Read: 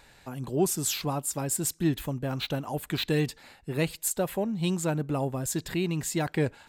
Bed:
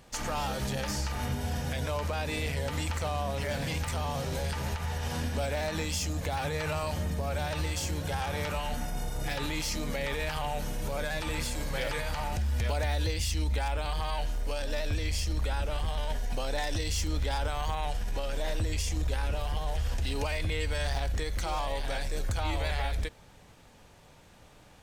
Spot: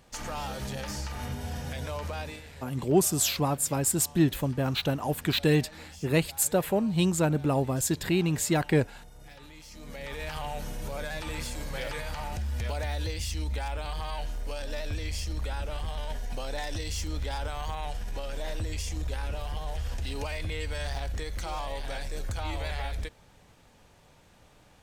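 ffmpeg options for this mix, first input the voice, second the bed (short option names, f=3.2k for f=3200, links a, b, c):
-filter_complex "[0:a]adelay=2350,volume=3dB[a];[1:a]volume=11dB,afade=t=out:st=2.21:d=0.21:silence=0.211349,afade=t=in:st=9.7:d=0.66:silence=0.199526[b];[a][b]amix=inputs=2:normalize=0"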